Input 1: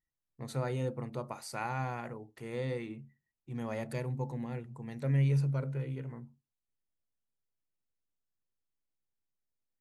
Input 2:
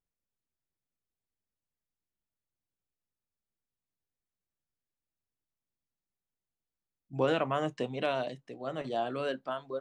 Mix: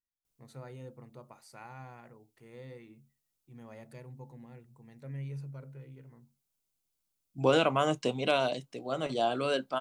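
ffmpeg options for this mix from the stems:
ffmpeg -i stem1.wav -i stem2.wav -filter_complex "[0:a]volume=-12dB[link_01];[1:a]highshelf=frequency=3900:gain=10.5,bandreject=frequency=1800:width=5.8,adelay=250,volume=3dB[link_02];[link_01][link_02]amix=inputs=2:normalize=0" out.wav

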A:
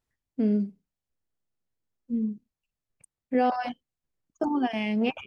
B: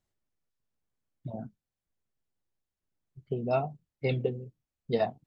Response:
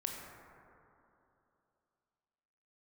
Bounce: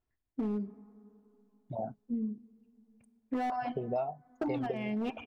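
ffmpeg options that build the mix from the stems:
-filter_complex "[0:a]lowpass=frequency=1400:poles=1,aecho=1:1:2.9:0.34,asoftclip=type=hard:threshold=-22dB,volume=-2dB,asplit=2[link_01][link_02];[link_02]volume=-17.5dB[link_03];[1:a]equalizer=frequency=750:width_type=o:width=1.2:gain=14,adelay=450,volume=-4.5dB[link_04];[2:a]atrim=start_sample=2205[link_05];[link_03][link_05]afir=irnorm=-1:irlink=0[link_06];[link_01][link_04][link_06]amix=inputs=3:normalize=0,acompressor=threshold=-30dB:ratio=10"

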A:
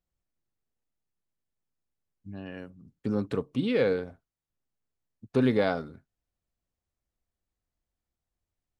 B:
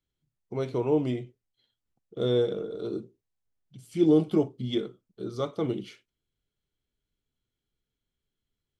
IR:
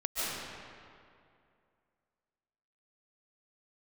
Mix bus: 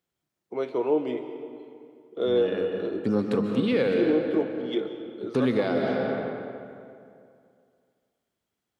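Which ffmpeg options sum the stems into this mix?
-filter_complex "[0:a]volume=2dB,asplit=2[link_01][link_02];[link_02]volume=-6.5dB[link_03];[1:a]acrossover=split=250 3400:gain=0.0891 1 0.2[link_04][link_05][link_06];[link_04][link_05][link_06]amix=inputs=3:normalize=0,volume=2dB,asplit=2[link_07][link_08];[link_08]volume=-15.5dB[link_09];[2:a]atrim=start_sample=2205[link_10];[link_03][link_09]amix=inputs=2:normalize=0[link_11];[link_11][link_10]afir=irnorm=-1:irlink=0[link_12];[link_01][link_07][link_12]amix=inputs=3:normalize=0,highpass=140,alimiter=limit=-13.5dB:level=0:latency=1:release=474"

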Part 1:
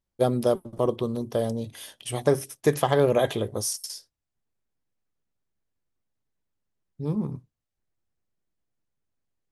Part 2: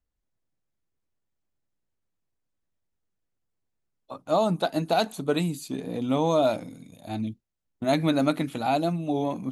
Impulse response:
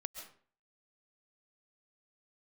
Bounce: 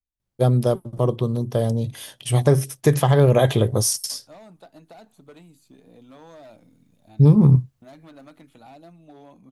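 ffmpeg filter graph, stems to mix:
-filter_complex "[0:a]dynaudnorm=framelen=450:gausssize=9:maxgain=12dB,equalizer=frequency=130:width=2.4:gain=12,adelay=200,volume=1dB[link_01];[1:a]volume=20dB,asoftclip=hard,volume=-20dB,acrossover=split=470|2200[link_02][link_03][link_04];[link_02]acompressor=threshold=-38dB:ratio=4[link_05];[link_03]acompressor=threshold=-30dB:ratio=4[link_06];[link_04]acompressor=threshold=-42dB:ratio=4[link_07];[link_05][link_06][link_07]amix=inputs=3:normalize=0,lowshelf=frequency=360:gain=6.5,volume=-17dB[link_08];[link_01][link_08]amix=inputs=2:normalize=0,alimiter=limit=-5.5dB:level=0:latency=1:release=194"

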